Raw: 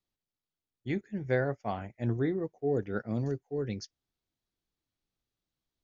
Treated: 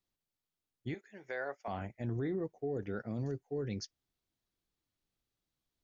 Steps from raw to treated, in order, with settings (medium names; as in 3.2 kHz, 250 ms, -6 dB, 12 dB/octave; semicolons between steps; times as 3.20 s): 0.94–1.68 s: high-pass 670 Hz 12 dB/octave; peak limiter -28.5 dBFS, peak gain reduction 8.5 dB